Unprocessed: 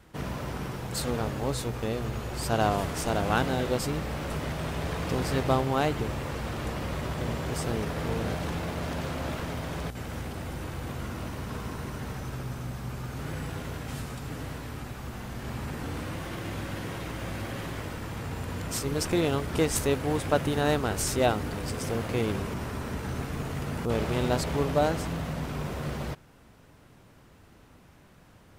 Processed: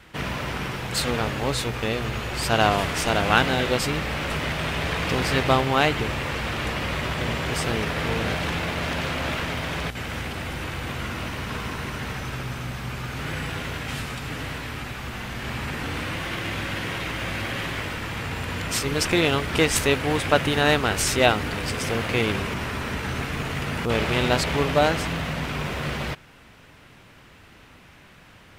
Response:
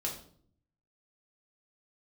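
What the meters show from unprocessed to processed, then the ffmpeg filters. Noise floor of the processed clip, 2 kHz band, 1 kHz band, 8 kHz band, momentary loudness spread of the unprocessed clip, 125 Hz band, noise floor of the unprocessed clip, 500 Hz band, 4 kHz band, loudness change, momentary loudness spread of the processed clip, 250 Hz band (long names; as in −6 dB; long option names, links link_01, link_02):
−50 dBFS, +11.5 dB, +6.5 dB, +5.5 dB, 11 LU, +3.0 dB, −55 dBFS, +4.0 dB, +11.0 dB, +6.0 dB, 11 LU, +3.5 dB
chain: -af "equalizer=frequency=2500:width=0.67:gain=10.5,volume=3dB"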